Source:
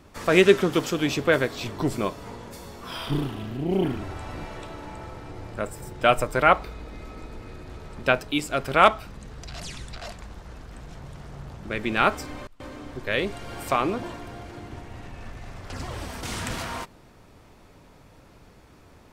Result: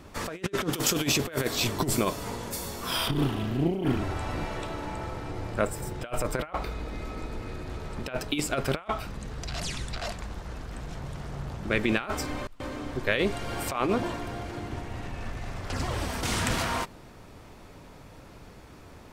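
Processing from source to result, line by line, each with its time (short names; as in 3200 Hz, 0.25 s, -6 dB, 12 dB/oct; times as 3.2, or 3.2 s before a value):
0.73–3.08 high shelf 5700 Hz +12 dB
whole clip: negative-ratio compressor -26 dBFS, ratio -0.5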